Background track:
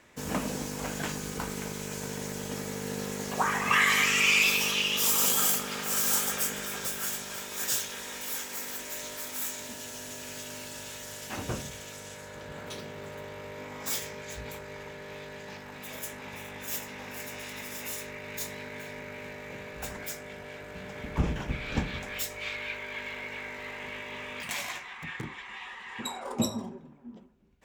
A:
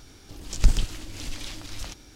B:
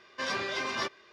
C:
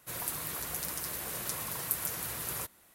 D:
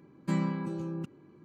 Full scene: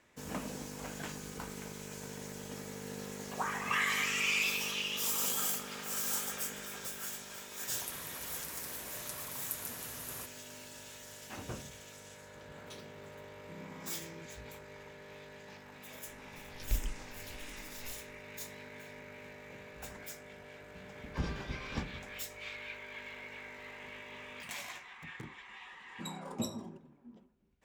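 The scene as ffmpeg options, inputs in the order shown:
-filter_complex "[4:a]asplit=2[s0][s1];[0:a]volume=0.376[s2];[s0]alimiter=level_in=1.5:limit=0.0631:level=0:latency=1:release=71,volume=0.668[s3];[1:a]asplit=2[s4][s5];[s5]afreqshift=-1.5[s6];[s4][s6]amix=inputs=2:normalize=1[s7];[3:a]atrim=end=2.94,asetpts=PTS-STARTPTS,volume=0.422,afade=t=in:d=0.004:c=hsin,afade=t=out:st=2.936:d=0.004:c=hsin,adelay=7600[s8];[s3]atrim=end=1.44,asetpts=PTS-STARTPTS,volume=0.168,afade=t=in:d=0.004:c=hsin,afade=t=out:st=1.436:d=0.004:c=hsin,adelay=13210[s9];[s7]atrim=end=2.15,asetpts=PTS-STARTPTS,volume=0.282,afade=t=in:d=0.004:c=hsin,afade=t=out:st=2.146:d=0.004:c=hsin,adelay=16070[s10];[2:a]atrim=end=1.12,asetpts=PTS-STARTPTS,volume=0.178,afade=t=in:d=0.004:c=hsin,afade=t=out:st=1.116:d=0.004:c=hsin,adelay=20960[s11];[s1]atrim=end=1.44,asetpts=PTS-STARTPTS,volume=0.126,afade=t=in:d=0.004:c=hsin,afade=t=out:st=1.436:d=0.004:c=hsin,adelay=25720[s12];[s2][s8][s9][s10][s11][s12]amix=inputs=6:normalize=0"

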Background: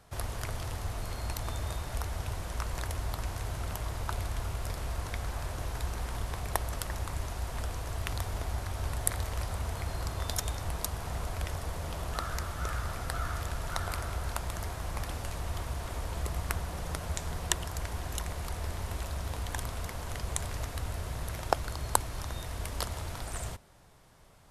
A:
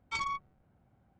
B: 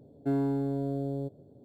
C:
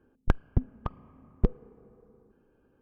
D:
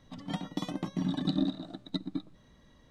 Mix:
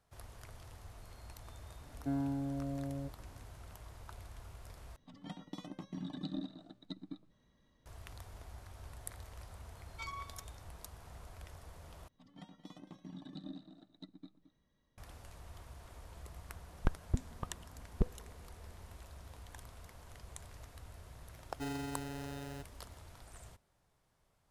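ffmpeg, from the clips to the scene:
-filter_complex "[2:a]asplit=2[s0][s1];[4:a]asplit=2[s2][s3];[0:a]volume=0.15[s4];[s0]bandreject=f=410:w=7[s5];[1:a]asplit=2[s6][s7];[s7]adelay=198.3,volume=0.224,highshelf=f=4000:g=-4.46[s8];[s6][s8]amix=inputs=2:normalize=0[s9];[s3]aecho=1:1:220:0.211[s10];[s1]acrusher=samples=39:mix=1:aa=0.000001[s11];[s4]asplit=3[s12][s13][s14];[s12]atrim=end=4.964[s15];[s2]atrim=end=2.9,asetpts=PTS-STARTPTS,volume=0.266[s16];[s13]atrim=start=7.856:end=12.084[s17];[s10]atrim=end=2.9,asetpts=PTS-STARTPTS,volume=0.126[s18];[s14]atrim=start=14.976[s19];[s5]atrim=end=1.64,asetpts=PTS-STARTPTS,volume=0.473,afade=t=in:d=0.004:c=hsin,afade=t=out:st=1.636:d=0.004:c=hsin,adelay=1800[s20];[s9]atrim=end=1.19,asetpts=PTS-STARTPTS,volume=0.299,afade=t=in:d=0.004:c=hsin,afade=t=out:st=1.186:d=0.004:c=hsin,adelay=9870[s21];[3:a]atrim=end=2.81,asetpts=PTS-STARTPTS,volume=0.398,afade=t=in:d=0.004:c=hsin,afade=t=out:st=2.806:d=0.004:c=hsin,adelay=16570[s22];[s11]atrim=end=1.64,asetpts=PTS-STARTPTS,volume=0.237,afade=t=in:d=0.004:c=hsin,afade=t=out:st=1.636:d=0.004:c=hsin,adelay=21340[s23];[s15][s16]acrossfade=d=0.004:c1=hsin:c2=hsin[s24];[s24][s17]acrossfade=d=0.004:c1=hsin:c2=hsin[s25];[s25][s18]acrossfade=d=0.004:c1=hsin:c2=hsin[s26];[s26][s19]acrossfade=d=0.004:c1=hsin:c2=hsin[s27];[s27][s20][s21][s22][s23]amix=inputs=5:normalize=0"

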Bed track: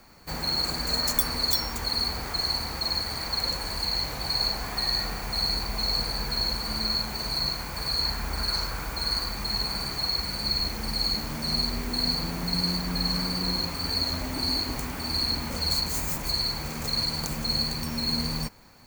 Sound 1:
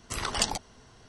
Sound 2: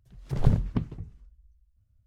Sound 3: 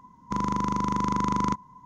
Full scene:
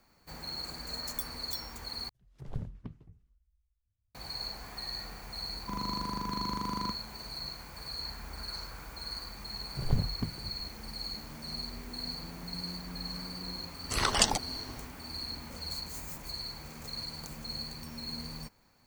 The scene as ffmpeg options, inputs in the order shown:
-filter_complex "[2:a]asplit=2[s0][s1];[0:a]volume=0.237[s2];[1:a]dynaudnorm=f=110:g=3:m=2.66[s3];[s2]asplit=2[s4][s5];[s4]atrim=end=2.094[s6];[s0]atrim=end=2.06,asetpts=PTS-STARTPTS,volume=0.158[s7];[s5]atrim=start=4.146[s8];[3:a]atrim=end=1.85,asetpts=PTS-STARTPTS,volume=0.316,afade=t=in:d=0.004:c=hsin,afade=t=out:st=1.846:d=0.004:c=hsin,adelay=236817S[s9];[s1]atrim=end=2.06,asetpts=PTS-STARTPTS,volume=0.447,afade=t=in:d=0.004:c=hsin,afade=t=out:st=2.056:d=0.004:c=hsin,adelay=417186S[s10];[s3]atrim=end=1.08,asetpts=PTS-STARTPTS,volume=0.708,afade=t=in:d=0.004:c=hsin,afade=t=out:st=1.076:d=0.004:c=hsin,adelay=608580S[s11];[s6][s7]acrossfade=d=0.004:c1=hsin:c2=hsin[s12];[s12][s8]acrossfade=d=0.004:c1=hsin:c2=hsin[s13];[s13][s9][s10][s11]amix=inputs=4:normalize=0"

